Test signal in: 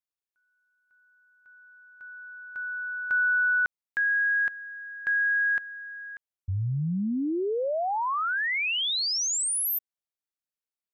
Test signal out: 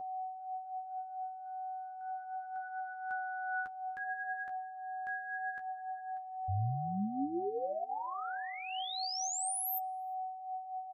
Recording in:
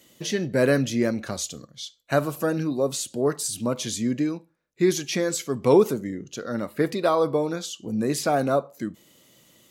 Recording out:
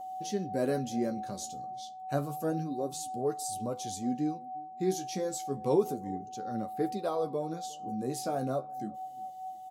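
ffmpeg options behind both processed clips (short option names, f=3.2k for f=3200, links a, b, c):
-filter_complex "[0:a]aeval=exprs='val(0)+0.0398*sin(2*PI*750*n/s)':c=same,flanger=delay=9.1:depth=6.7:regen=29:speed=0.3:shape=sinusoidal,equalizer=f=2k:w=0.78:g=-10,asplit=2[a][b];[b]adelay=356,lowpass=f=1.4k:p=1,volume=-24dB,asplit=2[c][d];[d]adelay=356,lowpass=f=1.4k:p=1,volume=0.36[e];[a][c][e]amix=inputs=3:normalize=0,volume=-5dB"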